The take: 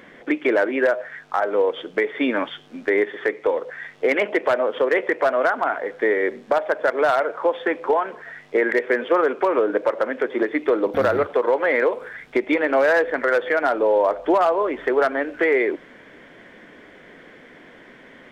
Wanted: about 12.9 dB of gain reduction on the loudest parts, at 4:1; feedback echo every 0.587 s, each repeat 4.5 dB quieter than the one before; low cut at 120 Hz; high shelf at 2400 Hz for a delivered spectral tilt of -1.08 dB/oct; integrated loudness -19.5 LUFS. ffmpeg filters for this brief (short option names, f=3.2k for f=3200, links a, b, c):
-af "highpass=120,highshelf=f=2.4k:g=6.5,acompressor=threshold=-30dB:ratio=4,aecho=1:1:587|1174|1761|2348|2935|3522|4109|4696|5283:0.596|0.357|0.214|0.129|0.0772|0.0463|0.0278|0.0167|0.01,volume=11dB"